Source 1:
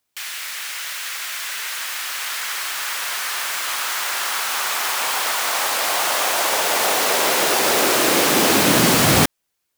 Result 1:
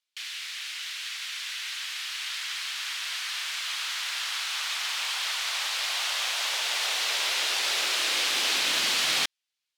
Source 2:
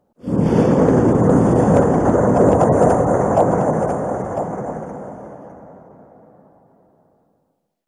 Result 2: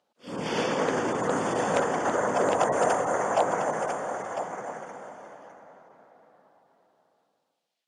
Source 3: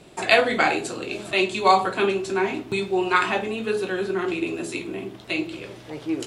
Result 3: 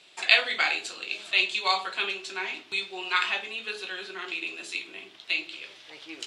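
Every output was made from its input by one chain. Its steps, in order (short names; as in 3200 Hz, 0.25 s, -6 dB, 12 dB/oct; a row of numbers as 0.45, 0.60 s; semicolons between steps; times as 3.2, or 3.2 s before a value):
band-pass 3500 Hz, Q 1.3; match loudness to -27 LUFS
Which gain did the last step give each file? -2.5, +8.0, +3.5 dB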